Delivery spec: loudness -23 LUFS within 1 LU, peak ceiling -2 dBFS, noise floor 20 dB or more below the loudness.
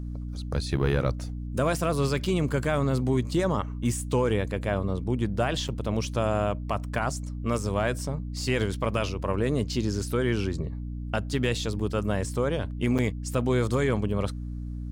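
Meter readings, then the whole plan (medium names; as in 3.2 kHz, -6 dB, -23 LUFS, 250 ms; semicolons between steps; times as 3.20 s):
dropouts 2; longest dropout 7.4 ms; hum 60 Hz; highest harmonic 300 Hz; hum level -31 dBFS; loudness -28.0 LUFS; peak level -14.5 dBFS; loudness target -23.0 LUFS
-> interpolate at 5.68/12.98 s, 7.4 ms; hum notches 60/120/180/240/300 Hz; trim +5 dB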